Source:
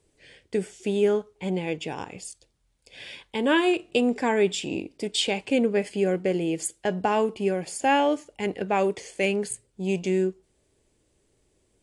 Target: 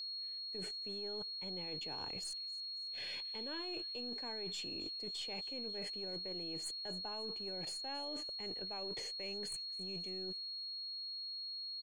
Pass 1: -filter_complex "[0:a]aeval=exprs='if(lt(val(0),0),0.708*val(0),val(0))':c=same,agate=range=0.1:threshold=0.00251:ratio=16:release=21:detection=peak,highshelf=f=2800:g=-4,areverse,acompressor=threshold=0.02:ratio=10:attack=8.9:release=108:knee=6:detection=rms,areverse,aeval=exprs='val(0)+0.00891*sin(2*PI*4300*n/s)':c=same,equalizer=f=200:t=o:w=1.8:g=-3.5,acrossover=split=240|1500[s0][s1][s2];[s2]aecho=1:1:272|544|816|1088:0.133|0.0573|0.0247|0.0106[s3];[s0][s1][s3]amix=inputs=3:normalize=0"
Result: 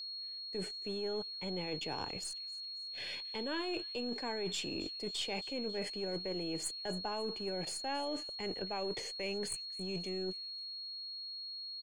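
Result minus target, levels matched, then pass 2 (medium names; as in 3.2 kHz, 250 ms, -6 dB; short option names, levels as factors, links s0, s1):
compression: peak gain reduction -8 dB
-filter_complex "[0:a]aeval=exprs='if(lt(val(0),0),0.708*val(0),val(0))':c=same,agate=range=0.1:threshold=0.00251:ratio=16:release=21:detection=peak,highshelf=f=2800:g=-4,areverse,acompressor=threshold=0.00708:ratio=10:attack=8.9:release=108:knee=6:detection=rms,areverse,aeval=exprs='val(0)+0.00891*sin(2*PI*4300*n/s)':c=same,equalizer=f=200:t=o:w=1.8:g=-3.5,acrossover=split=240|1500[s0][s1][s2];[s2]aecho=1:1:272|544|816|1088:0.133|0.0573|0.0247|0.0106[s3];[s0][s1][s3]amix=inputs=3:normalize=0"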